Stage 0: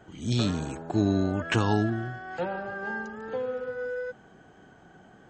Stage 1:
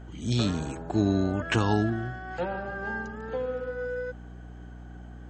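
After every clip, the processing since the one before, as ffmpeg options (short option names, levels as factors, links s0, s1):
-af "aeval=exprs='val(0)+0.00794*(sin(2*PI*60*n/s)+sin(2*PI*2*60*n/s)/2+sin(2*PI*3*60*n/s)/3+sin(2*PI*4*60*n/s)/4+sin(2*PI*5*60*n/s)/5)':c=same"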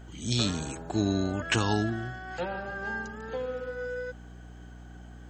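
-af "highshelf=f=2700:g=11,volume=0.708"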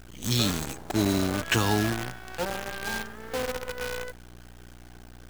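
-af "acrusher=bits=6:dc=4:mix=0:aa=0.000001,volume=1.26"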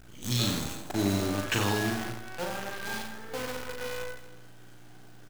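-af "aecho=1:1:40|92|159.6|247.5|361.7:0.631|0.398|0.251|0.158|0.1,volume=0.562"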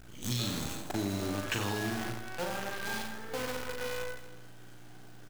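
-af "acompressor=threshold=0.0316:ratio=4"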